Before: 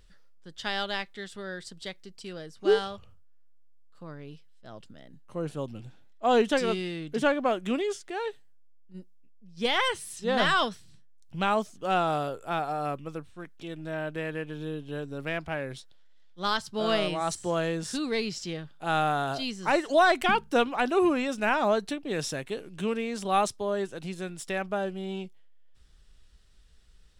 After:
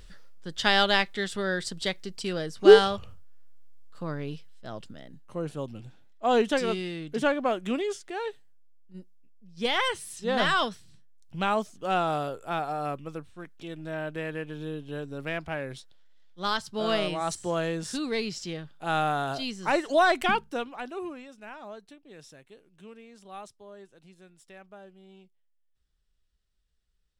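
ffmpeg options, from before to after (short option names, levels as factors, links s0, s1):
-af "volume=2.82,afade=t=out:st=4.23:d=1.22:silence=0.334965,afade=t=out:st=20.32:d=0.25:silence=0.398107,afade=t=out:st=20.57:d=0.75:silence=0.334965"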